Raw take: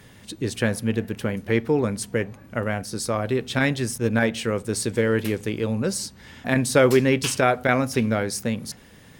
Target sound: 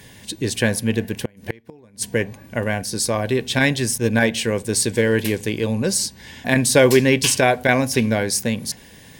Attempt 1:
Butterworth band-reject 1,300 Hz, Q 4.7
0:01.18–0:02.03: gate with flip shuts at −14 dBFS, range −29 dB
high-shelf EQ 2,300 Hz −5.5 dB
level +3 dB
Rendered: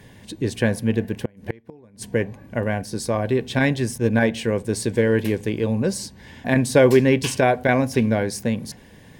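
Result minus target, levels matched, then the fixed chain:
4,000 Hz band −6.5 dB
Butterworth band-reject 1,300 Hz, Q 4.7
0:01.18–0:02.03: gate with flip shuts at −14 dBFS, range −29 dB
high-shelf EQ 2,300 Hz +6 dB
level +3 dB

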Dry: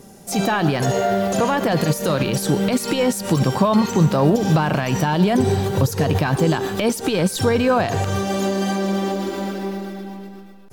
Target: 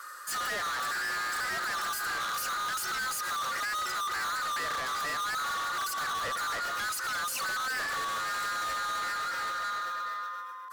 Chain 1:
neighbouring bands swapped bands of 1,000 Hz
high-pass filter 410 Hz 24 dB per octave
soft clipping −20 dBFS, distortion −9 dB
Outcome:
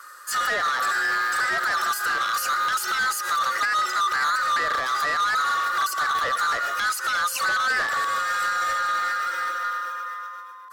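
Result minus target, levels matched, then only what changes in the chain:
soft clipping: distortion −5 dB
change: soft clipping −31.5 dBFS, distortion −3 dB

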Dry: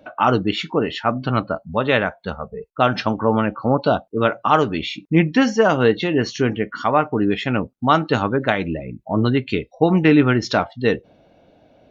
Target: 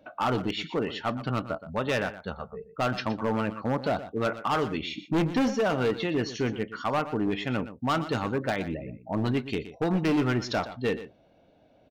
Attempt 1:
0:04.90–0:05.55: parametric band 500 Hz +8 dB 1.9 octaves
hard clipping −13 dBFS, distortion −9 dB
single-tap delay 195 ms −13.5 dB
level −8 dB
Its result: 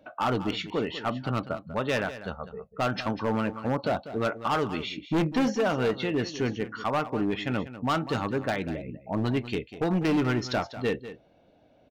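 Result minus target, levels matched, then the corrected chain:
echo 75 ms late
0:04.90–0:05.55: parametric band 500 Hz +8 dB 1.9 octaves
hard clipping −13 dBFS, distortion −9 dB
single-tap delay 120 ms −13.5 dB
level −8 dB

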